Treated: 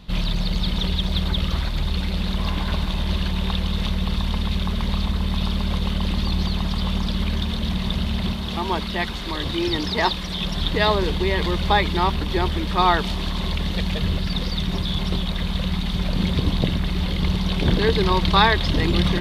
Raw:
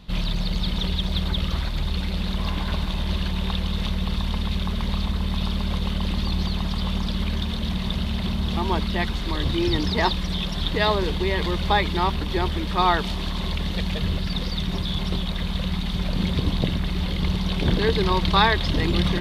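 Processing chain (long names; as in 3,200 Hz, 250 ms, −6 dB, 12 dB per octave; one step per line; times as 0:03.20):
0:08.33–0:10.41: low-shelf EQ 220 Hz −7.5 dB
level +2 dB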